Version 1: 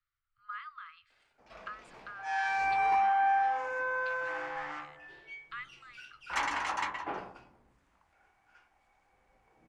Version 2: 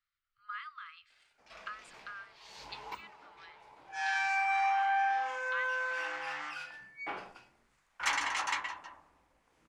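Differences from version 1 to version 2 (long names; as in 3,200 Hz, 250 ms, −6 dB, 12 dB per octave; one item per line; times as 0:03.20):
second sound: entry +1.70 s
master: add tilt shelving filter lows −6.5 dB, about 1,400 Hz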